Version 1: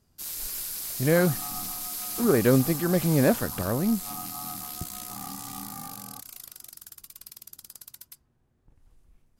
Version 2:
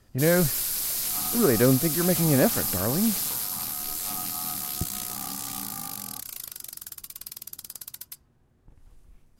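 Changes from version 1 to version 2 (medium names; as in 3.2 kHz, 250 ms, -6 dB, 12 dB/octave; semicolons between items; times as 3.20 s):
speech: entry -0.85 s; first sound +6.0 dB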